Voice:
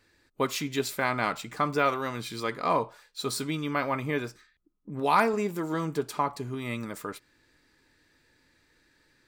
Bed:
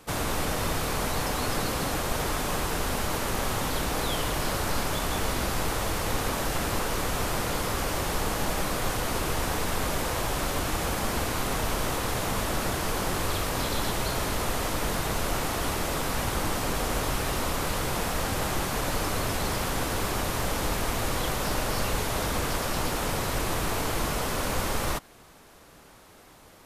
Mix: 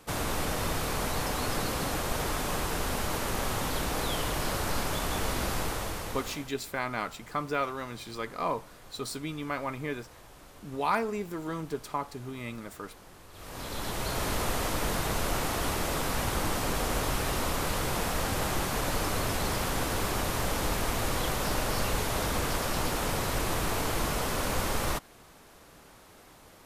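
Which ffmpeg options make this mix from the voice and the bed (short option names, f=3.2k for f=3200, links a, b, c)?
-filter_complex "[0:a]adelay=5750,volume=-5dB[a];[1:a]volume=19.5dB,afade=t=out:st=5.53:d=1:silence=0.0891251,afade=t=in:st=13.32:d=0.99:silence=0.0794328[b];[a][b]amix=inputs=2:normalize=0"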